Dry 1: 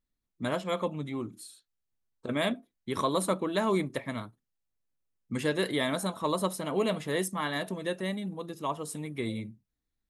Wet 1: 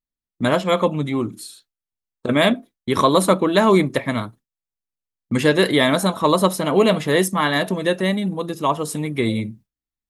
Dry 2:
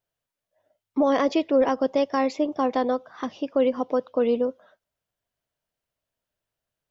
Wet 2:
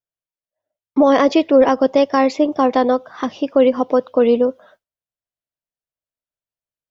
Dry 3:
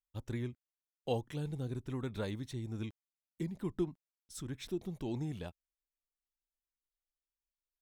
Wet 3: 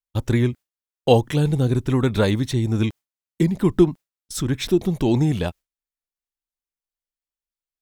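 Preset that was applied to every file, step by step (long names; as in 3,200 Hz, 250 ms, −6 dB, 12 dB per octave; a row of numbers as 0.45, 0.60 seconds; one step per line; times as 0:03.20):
noise gate with hold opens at −47 dBFS
dynamic equaliser 8,900 Hz, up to −4 dB, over −57 dBFS, Q 2
normalise the peak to −3 dBFS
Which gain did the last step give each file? +13.0, +8.5, +19.5 decibels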